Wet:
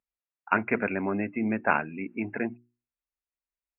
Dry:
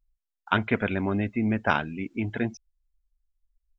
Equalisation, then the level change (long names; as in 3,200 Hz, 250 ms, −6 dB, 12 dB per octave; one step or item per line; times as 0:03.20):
high-pass filter 200 Hz 12 dB per octave
linear-phase brick-wall low-pass 2,800 Hz
mains-hum notches 60/120/180/240/300/360 Hz
0.0 dB